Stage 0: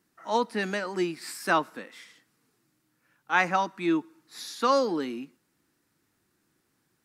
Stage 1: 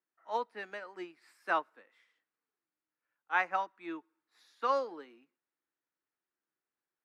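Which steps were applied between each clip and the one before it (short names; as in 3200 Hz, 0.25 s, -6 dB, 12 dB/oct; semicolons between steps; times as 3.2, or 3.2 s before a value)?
three-band isolator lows -18 dB, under 380 Hz, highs -13 dB, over 3000 Hz; upward expander 1.5:1, over -45 dBFS; gain -5 dB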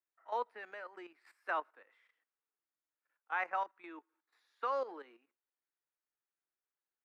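high shelf 5000 Hz +10.5 dB; level quantiser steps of 12 dB; three-band isolator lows -18 dB, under 320 Hz, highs -15 dB, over 2800 Hz; gain +3 dB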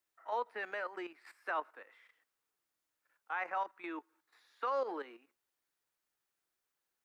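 limiter -34.5 dBFS, peak gain reduction 11 dB; gain +7.5 dB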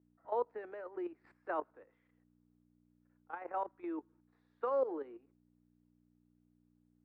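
hum 60 Hz, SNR 24 dB; level quantiser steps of 12 dB; band-pass 360 Hz, Q 1.5; gain +11 dB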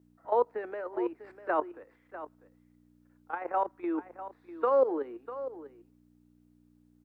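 echo 0.647 s -13.5 dB; gain +8.5 dB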